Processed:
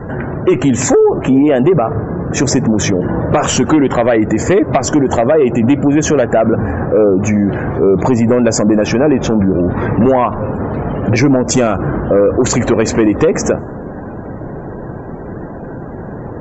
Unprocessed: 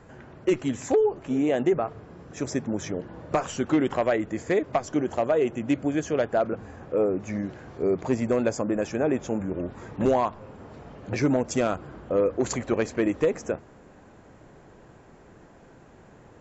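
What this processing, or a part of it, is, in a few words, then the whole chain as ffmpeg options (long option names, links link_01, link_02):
mastering chain: -filter_complex "[0:a]equalizer=frequency=160:width_type=o:width=2.6:gain=3.5,acompressor=threshold=-24dB:ratio=2,asoftclip=type=tanh:threshold=-16.5dB,asoftclip=type=hard:threshold=-20dB,alimiter=level_in=27dB:limit=-1dB:release=50:level=0:latency=1,asettb=1/sr,asplit=3[link_01][link_02][link_03];[link_01]atrim=end=8.854[link_04];[link_02]atrim=start=8.85:end=9.89,asetpts=PTS-STARTPTS,afade=type=in:duration=0.004:curve=qsin,afade=type=out:start_time=1.036:duration=0.004:curve=qsin,lowpass=frequency=5700:width=0.5412,lowpass=frequency=5700:width=1.3066[link_05];[link_03]atrim=start=9.886[link_06];[link_04][link_05]acrossfade=duration=0.004:curve1=hsin:curve2=qsin[link_07];[link_07][link_06]acrossfade=duration=0.004:curve1=qsin:curve2=hsin,afftdn=noise_reduction=29:noise_floor=-29,volume=-3.5dB"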